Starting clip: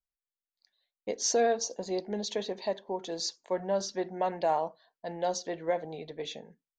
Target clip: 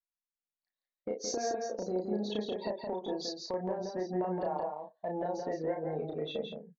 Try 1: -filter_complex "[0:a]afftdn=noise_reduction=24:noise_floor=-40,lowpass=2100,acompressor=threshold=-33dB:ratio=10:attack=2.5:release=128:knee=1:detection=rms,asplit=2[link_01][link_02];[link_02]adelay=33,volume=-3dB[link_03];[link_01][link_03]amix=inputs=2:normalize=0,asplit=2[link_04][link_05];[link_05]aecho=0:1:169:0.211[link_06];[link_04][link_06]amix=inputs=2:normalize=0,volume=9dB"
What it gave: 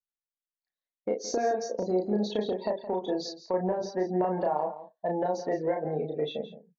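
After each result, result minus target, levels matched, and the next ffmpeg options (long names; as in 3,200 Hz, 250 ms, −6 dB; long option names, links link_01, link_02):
downward compressor: peak gain reduction −7 dB; echo-to-direct −8.5 dB
-filter_complex "[0:a]afftdn=noise_reduction=24:noise_floor=-40,lowpass=2100,acompressor=threshold=-41dB:ratio=10:attack=2.5:release=128:knee=1:detection=rms,asplit=2[link_01][link_02];[link_02]adelay=33,volume=-3dB[link_03];[link_01][link_03]amix=inputs=2:normalize=0,asplit=2[link_04][link_05];[link_05]aecho=0:1:169:0.211[link_06];[link_04][link_06]amix=inputs=2:normalize=0,volume=9dB"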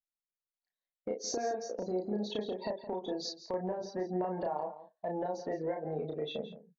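echo-to-direct −8.5 dB
-filter_complex "[0:a]afftdn=noise_reduction=24:noise_floor=-40,lowpass=2100,acompressor=threshold=-41dB:ratio=10:attack=2.5:release=128:knee=1:detection=rms,asplit=2[link_01][link_02];[link_02]adelay=33,volume=-3dB[link_03];[link_01][link_03]amix=inputs=2:normalize=0,asplit=2[link_04][link_05];[link_05]aecho=0:1:169:0.562[link_06];[link_04][link_06]amix=inputs=2:normalize=0,volume=9dB"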